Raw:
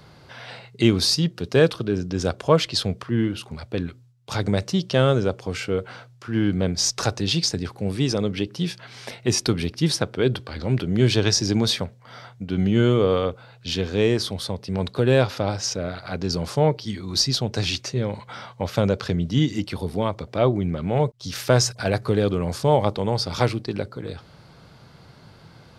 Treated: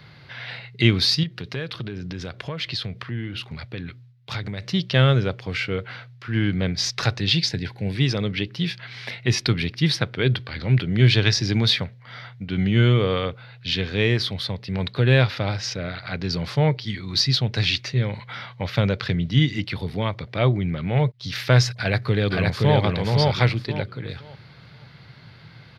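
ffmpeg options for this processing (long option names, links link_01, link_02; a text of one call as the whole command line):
ffmpeg -i in.wav -filter_complex "[0:a]asettb=1/sr,asplit=3[link_01][link_02][link_03];[link_01]atrim=end=1.234[link_04];[link_02]atrim=start=1.23:end=4.64,asetpts=PTS-STARTPTS,afade=type=in:duration=0.004:curve=qsin,afade=type=out:start_time=3.406:duration=0.004:curve=qsin,acompressor=threshold=-27dB:ratio=4:attack=3.2:release=140:knee=1:detection=peak[link_05];[link_03]atrim=start=4.636[link_06];[link_04][link_05]acrossfade=duration=0.004:curve1=hsin:curve2=qsin[link_07];[link_07][link_06]acrossfade=duration=0.004:curve1=qsin:curve2=hsin,asettb=1/sr,asplit=3[link_08][link_09][link_10];[link_08]atrim=end=7.364[link_11];[link_09]atrim=start=7.36:end=7.96,asetpts=PTS-STARTPTS,afade=type=in:duration=0.004:curve=qsin,afade=type=out:start_time=0.596:duration=0.004:curve=qsin,asuperstop=centerf=1200:order=8:qfactor=4.1[link_12];[link_10]atrim=start=7.956[link_13];[link_11][link_12]acrossfade=duration=0.004:curve1=hsin:curve2=qsin[link_14];[link_14][link_13]acrossfade=duration=0.004:curve1=qsin:curve2=hsin,asplit=2[link_15][link_16];[link_16]afade=type=in:start_time=21.75:duration=0.01,afade=type=out:start_time=22.79:duration=0.01,aecho=0:1:520|1040|1560|2080:0.841395|0.210349|0.0525872|0.0131468[link_17];[link_15][link_17]amix=inputs=2:normalize=0,equalizer=frequency=125:width_type=o:width=1:gain=10,equalizer=frequency=2000:width_type=o:width=1:gain=12,equalizer=frequency=4000:width_type=o:width=1:gain=9,equalizer=frequency=8000:width_type=o:width=1:gain=-10,volume=-5dB" out.wav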